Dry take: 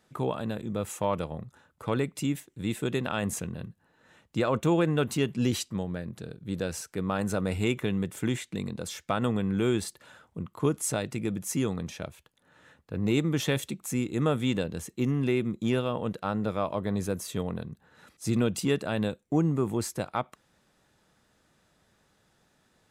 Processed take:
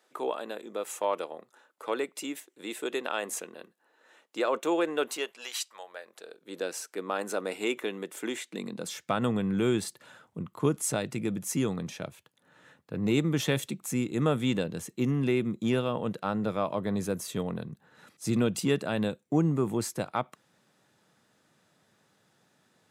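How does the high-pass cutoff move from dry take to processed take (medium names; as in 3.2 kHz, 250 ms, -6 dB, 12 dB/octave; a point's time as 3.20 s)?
high-pass 24 dB/octave
5.06 s 340 Hz
5.57 s 880 Hz
6.63 s 300 Hz
8.40 s 300 Hz
9.11 s 110 Hz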